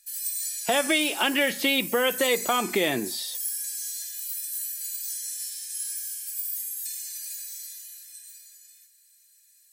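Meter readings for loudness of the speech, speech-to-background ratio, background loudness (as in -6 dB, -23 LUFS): -24.5 LUFS, 6.5 dB, -31.0 LUFS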